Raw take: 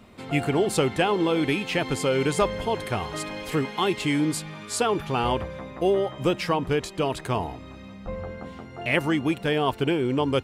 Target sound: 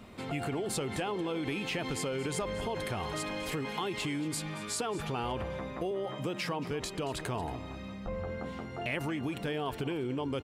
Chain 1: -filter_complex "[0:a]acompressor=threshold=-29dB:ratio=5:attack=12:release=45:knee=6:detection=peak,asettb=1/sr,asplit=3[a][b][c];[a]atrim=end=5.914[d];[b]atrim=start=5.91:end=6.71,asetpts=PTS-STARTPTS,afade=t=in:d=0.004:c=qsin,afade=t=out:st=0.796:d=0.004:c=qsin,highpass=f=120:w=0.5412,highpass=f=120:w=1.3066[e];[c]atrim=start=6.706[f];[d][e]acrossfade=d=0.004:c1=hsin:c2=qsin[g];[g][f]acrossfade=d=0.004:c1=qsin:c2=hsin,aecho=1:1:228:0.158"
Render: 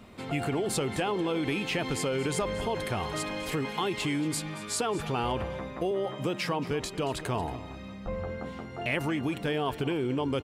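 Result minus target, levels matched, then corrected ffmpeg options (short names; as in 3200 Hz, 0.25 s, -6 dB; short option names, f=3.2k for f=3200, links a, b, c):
compressor: peak gain reduction -5 dB
-filter_complex "[0:a]acompressor=threshold=-35dB:ratio=5:attack=12:release=45:knee=6:detection=peak,asettb=1/sr,asplit=3[a][b][c];[a]atrim=end=5.914[d];[b]atrim=start=5.91:end=6.71,asetpts=PTS-STARTPTS,afade=t=in:d=0.004:c=qsin,afade=t=out:st=0.796:d=0.004:c=qsin,highpass=f=120:w=0.5412,highpass=f=120:w=1.3066[e];[c]atrim=start=6.706[f];[d][e]acrossfade=d=0.004:c1=hsin:c2=qsin[g];[g][f]acrossfade=d=0.004:c1=qsin:c2=hsin,aecho=1:1:228:0.158"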